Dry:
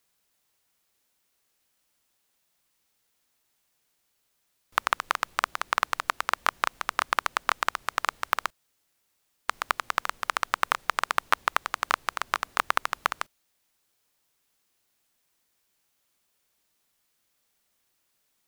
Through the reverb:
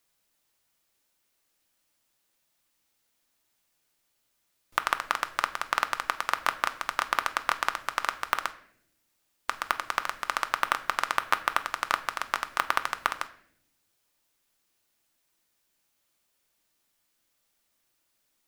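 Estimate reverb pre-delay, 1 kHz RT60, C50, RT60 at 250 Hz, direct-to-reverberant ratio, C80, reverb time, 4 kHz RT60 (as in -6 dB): 3 ms, 0.55 s, 15.5 dB, 1.2 s, 8.5 dB, 18.0 dB, 0.70 s, 0.55 s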